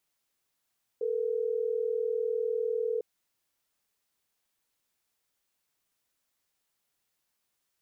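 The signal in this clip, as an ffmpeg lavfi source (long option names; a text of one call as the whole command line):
ffmpeg -f lavfi -i "aevalsrc='0.0316*(sin(2*PI*440*t)+sin(2*PI*480*t))*clip(min(mod(t,6),2-mod(t,6))/0.005,0,1)':duration=3.12:sample_rate=44100" out.wav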